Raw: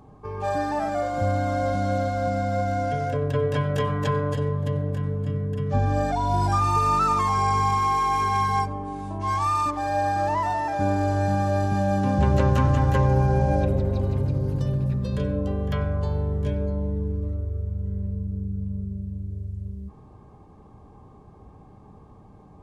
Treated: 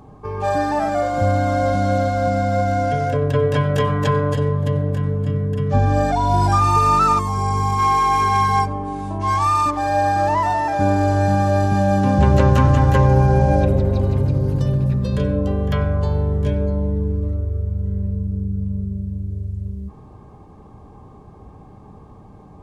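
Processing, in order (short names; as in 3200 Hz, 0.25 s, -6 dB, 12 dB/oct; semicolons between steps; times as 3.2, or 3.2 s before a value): 7.18–7.78 bell 2100 Hz -14 dB -> -7.5 dB 2.8 oct; gain +6 dB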